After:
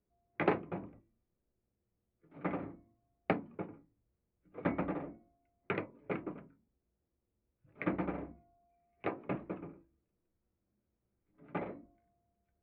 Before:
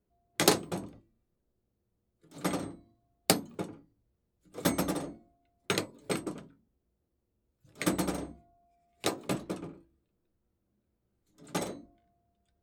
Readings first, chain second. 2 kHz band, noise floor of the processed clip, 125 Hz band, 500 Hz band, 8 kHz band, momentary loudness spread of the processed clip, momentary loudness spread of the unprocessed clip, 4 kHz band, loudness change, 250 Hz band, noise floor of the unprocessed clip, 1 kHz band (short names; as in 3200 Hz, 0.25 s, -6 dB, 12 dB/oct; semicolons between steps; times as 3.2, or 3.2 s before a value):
-5.0 dB, -85 dBFS, -5.0 dB, -4.5 dB, under -40 dB, 15 LU, 17 LU, -23.5 dB, -6.5 dB, -5.0 dB, -80 dBFS, -4.0 dB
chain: elliptic low-pass 2400 Hz, stop band 80 dB; gain -4 dB